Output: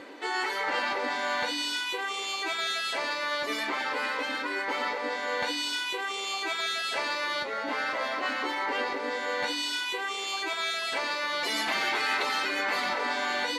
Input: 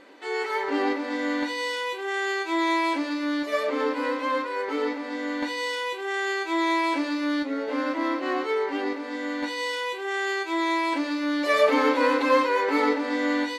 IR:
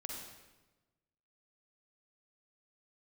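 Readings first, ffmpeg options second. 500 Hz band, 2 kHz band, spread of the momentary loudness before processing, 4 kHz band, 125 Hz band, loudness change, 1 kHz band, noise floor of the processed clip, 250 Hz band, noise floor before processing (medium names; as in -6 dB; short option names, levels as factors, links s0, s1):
-9.0 dB, -0.5 dB, 8 LU, +4.0 dB, no reading, -3.5 dB, -4.0 dB, -34 dBFS, -14.5 dB, -34 dBFS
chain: -af "afftfilt=real='re*lt(hypot(re,im),0.141)':imag='im*lt(hypot(re,im),0.141)':win_size=1024:overlap=0.75,highpass=62,areverse,acompressor=mode=upward:threshold=0.00794:ratio=2.5,areverse,volume=1.68"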